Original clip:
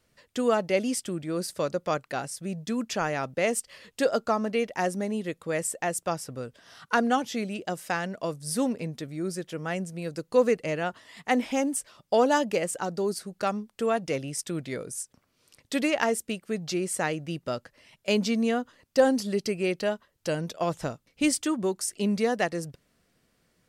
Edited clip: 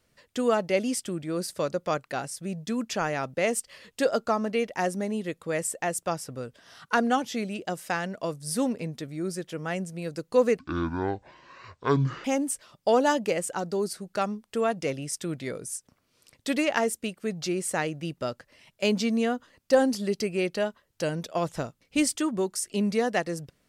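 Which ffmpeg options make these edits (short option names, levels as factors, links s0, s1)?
-filter_complex "[0:a]asplit=3[s0][s1][s2];[s0]atrim=end=10.594[s3];[s1]atrim=start=10.59:end=11.5,asetpts=PTS-STARTPTS,asetrate=24255,aresample=44100,atrim=end_sample=72965,asetpts=PTS-STARTPTS[s4];[s2]atrim=start=11.496[s5];[s3][s4]acrossfade=d=0.004:c1=hsin:c2=hsin[s6];[s6][s5]acrossfade=d=0.004:c1=hsin:c2=hsin"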